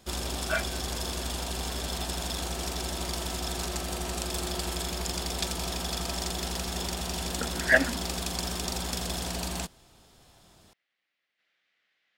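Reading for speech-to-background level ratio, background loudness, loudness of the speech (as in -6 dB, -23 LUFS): 5.0 dB, -32.0 LUFS, -27.0 LUFS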